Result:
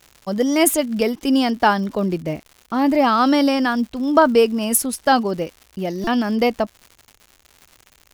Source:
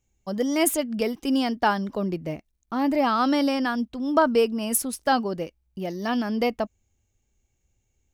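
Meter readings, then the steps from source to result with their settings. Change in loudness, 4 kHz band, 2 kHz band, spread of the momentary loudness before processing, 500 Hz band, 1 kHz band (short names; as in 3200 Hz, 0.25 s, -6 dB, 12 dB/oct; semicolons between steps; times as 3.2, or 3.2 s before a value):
+6.0 dB, +6.0 dB, +6.0 dB, 12 LU, +6.0 dB, +6.0 dB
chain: crackle 190/s -39 dBFS; stuck buffer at 6.04, samples 128, times 10; gain +6 dB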